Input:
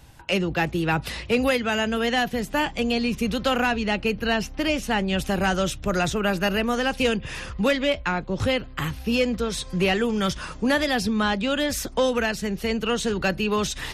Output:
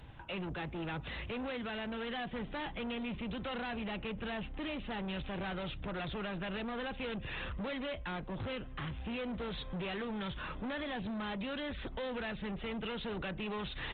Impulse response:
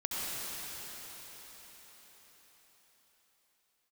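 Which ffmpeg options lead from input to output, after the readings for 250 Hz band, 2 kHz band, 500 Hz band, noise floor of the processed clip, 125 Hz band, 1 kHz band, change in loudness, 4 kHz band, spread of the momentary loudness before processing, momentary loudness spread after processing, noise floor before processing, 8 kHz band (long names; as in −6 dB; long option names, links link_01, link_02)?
−15.0 dB, −15.5 dB, −16.5 dB, −46 dBFS, −13.0 dB, −15.5 dB, −15.5 dB, −15.5 dB, 4 LU, 2 LU, −40 dBFS, below −40 dB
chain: -af "alimiter=limit=-21dB:level=0:latency=1:release=290,aresample=8000,asoftclip=type=tanh:threshold=-35dB,aresample=44100,volume=-1.5dB" -ar 48000 -c:a libopus -b:a 20k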